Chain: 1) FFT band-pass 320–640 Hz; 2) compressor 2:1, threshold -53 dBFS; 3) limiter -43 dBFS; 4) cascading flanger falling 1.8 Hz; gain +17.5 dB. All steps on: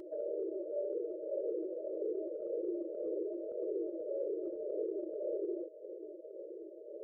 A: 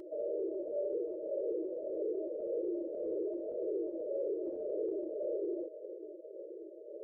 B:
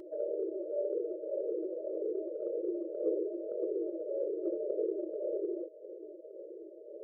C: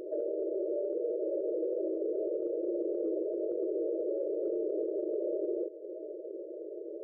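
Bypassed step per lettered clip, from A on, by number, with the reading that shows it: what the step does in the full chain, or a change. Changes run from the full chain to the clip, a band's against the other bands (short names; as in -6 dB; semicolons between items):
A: 2, mean gain reduction 8.0 dB; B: 3, mean gain reduction 2.0 dB; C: 4, crest factor change -3.0 dB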